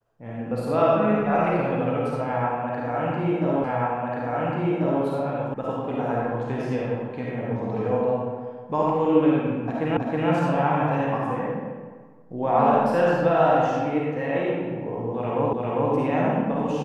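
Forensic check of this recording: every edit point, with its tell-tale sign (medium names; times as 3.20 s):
3.64 s: repeat of the last 1.39 s
5.54 s: sound stops dead
9.97 s: repeat of the last 0.32 s
15.53 s: repeat of the last 0.4 s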